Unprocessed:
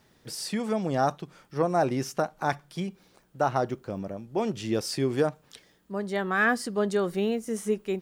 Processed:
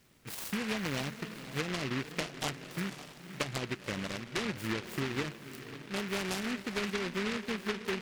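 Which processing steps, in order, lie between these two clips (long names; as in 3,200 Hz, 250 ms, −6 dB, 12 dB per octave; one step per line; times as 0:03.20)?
treble cut that deepens with the level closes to 340 Hz, closed at −20.5 dBFS
downward compressor, threshold −28 dBFS, peak gain reduction 7 dB
on a send: feedback delay with all-pass diffusion 531 ms, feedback 44%, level −11 dB
on the sum: short delay modulated by noise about 1,800 Hz, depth 0.3 ms
level −2.5 dB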